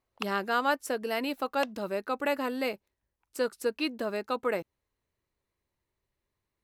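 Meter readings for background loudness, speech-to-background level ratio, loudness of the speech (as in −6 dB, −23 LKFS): −42.5 LKFS, 11.0 dB, −31.5 LKFS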